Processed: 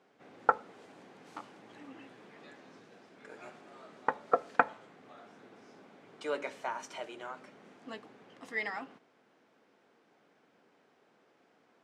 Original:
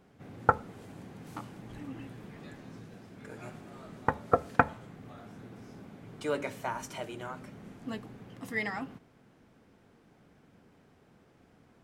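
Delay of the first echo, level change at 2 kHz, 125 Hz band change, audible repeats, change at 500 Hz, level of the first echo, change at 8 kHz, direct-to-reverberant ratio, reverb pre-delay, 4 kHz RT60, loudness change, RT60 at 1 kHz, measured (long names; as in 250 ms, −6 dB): no echo audible, −1.5 dB, −19.0 dB, no echo audible, −3.0 dB, no echo audible, −5.0 dB, no reverb audible, no reverb audible, no reverb audible, −1.0 dB, no reverb audible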